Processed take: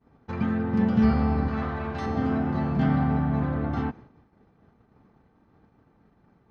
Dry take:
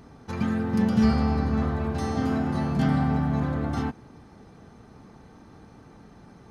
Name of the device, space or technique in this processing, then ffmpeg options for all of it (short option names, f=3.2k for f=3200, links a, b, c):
hearing-loss simulation: -filter_complex "[0:a]asettb=1/sr,asplit=3[a][b][c];[a]atrim=end=1.484[d];[b]atrim=start=1.48:end=2.06,asetpts=PTS-STARTPTS,afade=t=in:d=0.004:c=qsin,afade=t=out:st=0.576:d=0.004:c=qsin,tiltshelf=f=760:g=-5.5[e];[c]atrim=start=2.056[f];[d][e]acrossfade=d=0.004:c1=hsin:c2=qsin[g];[g][f]acrossfade=d=0.004:c1=qsin:c2=hsin,lowpass=2.8k,agate=range=-33dB:threshold=-40dB:ratio=3:detection=peak"